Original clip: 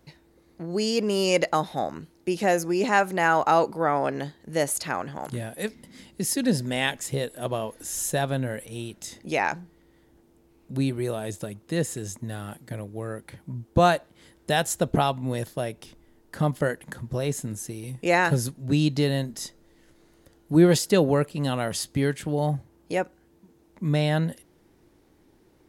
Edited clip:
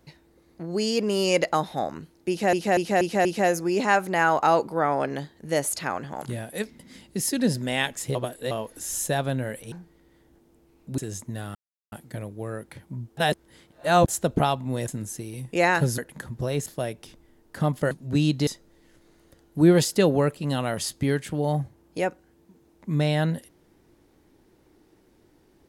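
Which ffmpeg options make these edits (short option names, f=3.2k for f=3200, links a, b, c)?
-filter_complex "[0:a]asplit=17[a][b][c][d][e][f][g][h][i][j][k][l][m][n][o][p][q];[a]atrim=end=2.532[r];[b]atrim=start=2.288:end=2.532[s];[c]atrim=start=2.288:end=2.532[t];[d]atrim=start=2.288:end=2.532[u];[e]atrim=start=2.288:end=7.192[v];[f]atrim=start=7.188:end=7.552,asetpts=PTS-STARTPTS,areverse[w];[g]atrim=start=7.548:end=8.762[x];[h]atrim=start=9.538:end=10.802[y];[i]atrim=start=11.918:end=12.49,asetpts=PTS-STARTPTS,afade=t=out:st=0.568:d=0.004:c=hsin,apad=pad_dur=0.37[z];[j]atrim=start=12.49:end=13.742,asetpts=PTS-STARTPTS,afade=t=in:d=0.004:c=hsin[aa];[k]atrim=start=13.738:end=14.652,asetpts=PTS-STARTPTS,areverse[ab];[l]atrim=start=14.648:end=15.452[ac];[m]atrim=start=17.378:end=18.482[ad];[n]atrim=start=16.698:end=17.382[ae];[o]atrim=start=15.448:end=16.702[af];[p]atrim=start=18.478:end=19.042[ag];[q]atrim=start=19.408[ah];[r][s]acrossfade=d=0.004:c1=hsin:c2=hsin[ai];[ai][t]acrossfade=d=0.004:c1=hsin:c2=hsin[aj];[aj][u]acrossfade=d=0.004:c1=hsin:c2=hsin[ak];[ak][v]acrossfade=d=0.004:c1=hsin:c2=hsin[al];[al][w]acrossfade=d=0.004:c1=hsin:c2=hsin[am];[am][x]acrossfade=d=0.004:c1=hsin:c2=hsin[an];[an][y]acrossfade=d=0.004:c1=hsin:c2=hsin[ao];[z][aa]concat=n=2:v=0:a=1[ap];[ao][ap]acrossfade=d=0.004:c1=hsin:c2=hsin[aq];[aq][ab]acrossfade=d=0.004:c1=hsin:c2=hsin[ar];[ar][ac]acrossfade=d=0.004:c1=hsin:c2=hsin[as];[as][ad]acrossfade=d=0.004:c1=hsin:c2=hsin[at];[at][ae]acrossfade=d=0.004:c1=hsin:c2=hsin[au];[au][af]acrossfade=d=0.004:c1=hsin:c2=hsin[av];[av][ag]acrossfade=d=0.004:c1=hsin:c2=hsin[aw];[aw][ah]acrossfade=d=0.004:c1=hsin:c2=hsin"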